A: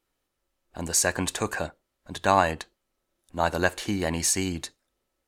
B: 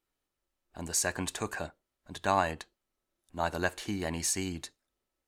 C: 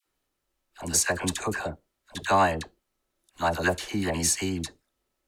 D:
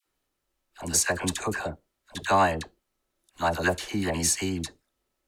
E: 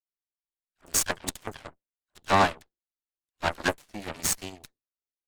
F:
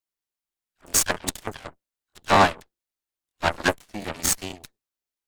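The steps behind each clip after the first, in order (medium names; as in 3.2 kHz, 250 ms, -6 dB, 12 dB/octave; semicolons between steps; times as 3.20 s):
band-stop 520 Hz, Q 12; trim -6.5 dB
phase dispersion lows, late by 63 ms, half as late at 880 Hz; trim +6 dB
no audible change
Chebyshev shaper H 2 -12 dB, 3 -38 dB, 6 -26 dB, 7 -17 dB, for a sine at -9 dBFS
crackling interface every 0.24 s, samples 1024, repeat, from 0.40 s; trim +4.5 dB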